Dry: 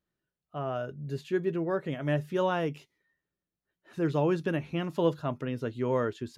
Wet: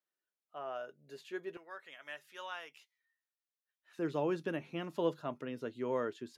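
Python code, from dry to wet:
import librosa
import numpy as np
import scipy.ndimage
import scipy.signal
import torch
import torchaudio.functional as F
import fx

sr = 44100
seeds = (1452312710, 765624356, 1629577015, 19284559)

y = fx.highpass(x, sr, hz=fx.steps((0.0, 530.0), (1.57, 1400.0), (3.99, 220.0)), slope=12)
y = y * librosa.db_to_amplitude(-6.0)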